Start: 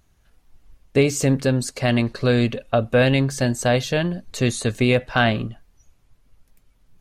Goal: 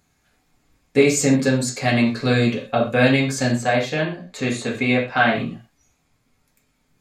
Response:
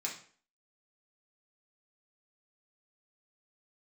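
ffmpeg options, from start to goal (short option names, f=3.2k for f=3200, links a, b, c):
-filter_complex "[0:a]asettb=1/sr,asplit=3[a][b][c];[a]atrim=end=3.544[d];[b]atrim=start=3.54:end=5.36,asetpts=PTS-STARTPTS,afade=t=in:d=0.004:c=qsin,afade=t=out:st=1.816:d=0.004:c=qsin,bass=f=250:g=-6,treble=f=4k:g=-10[e];[c]atrim=start=5.356[f];[d][e]acrossfade=d=0.004:c1=hsin:c2=qsin[g];[g][f]acrossfade=d=0.004:c1=qsin:c2=hsin[h];[1:a]atrim=start_sample=2205,atrim=end_sample=6174[i];[h][i]afir=irnorm=-1:irlink=0,volume=1.5dB"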